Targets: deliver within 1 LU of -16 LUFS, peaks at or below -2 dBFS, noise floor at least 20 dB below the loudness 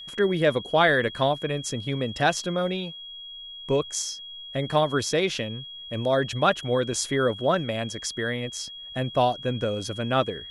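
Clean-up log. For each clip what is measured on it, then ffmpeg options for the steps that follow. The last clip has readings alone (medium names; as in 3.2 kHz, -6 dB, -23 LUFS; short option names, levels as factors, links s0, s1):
steady tone 3.3 kHz; tone level -38 dBFS; loudness -25.5 LUFS; peak level -8.5 dBFS; loudness target -16.0 LUFS
-> -af "bandreject=f=3300:w=30"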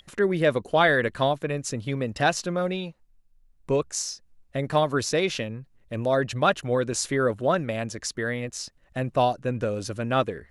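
steady tone not found; loudness -26.0 LUFS; peak level -8.0 dBFS; loudness target -16.0 LUFS
-> -af "volume=3.16,alimiter=limit=0.794:level=0:latency=1"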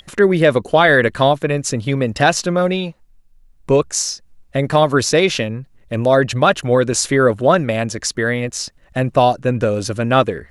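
loudness -16.5 LUFS; peak level -2.0 dBFS; noise floor -51 dBFS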